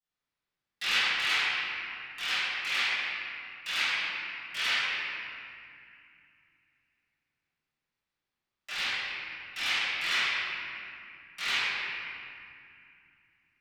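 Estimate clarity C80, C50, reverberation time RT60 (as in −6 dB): −3.5 dB, −6.0 dB, 2.4 s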